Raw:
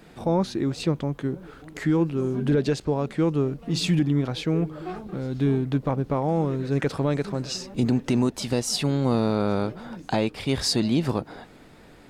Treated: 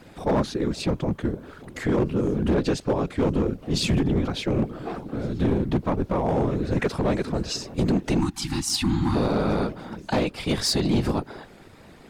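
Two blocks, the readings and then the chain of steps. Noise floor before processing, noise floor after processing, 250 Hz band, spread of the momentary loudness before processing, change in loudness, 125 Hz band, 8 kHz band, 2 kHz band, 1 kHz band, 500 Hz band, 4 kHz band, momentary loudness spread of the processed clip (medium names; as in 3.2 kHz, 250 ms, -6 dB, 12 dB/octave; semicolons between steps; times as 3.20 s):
-49 dBFS, -48 dBFS, 0.0 dB, 8 LU, 0.0 dB, -1.0 dB, +1.5 dB, +2.0 dB, +1.5 dB, +0.5 dB, +1.0 dB, 8 LU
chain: whisper effect; overload inside the chain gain 18 dB; time-frequency box 8.19–9.15 s, 350–740 Hz -27 dB; trim +1.5 dB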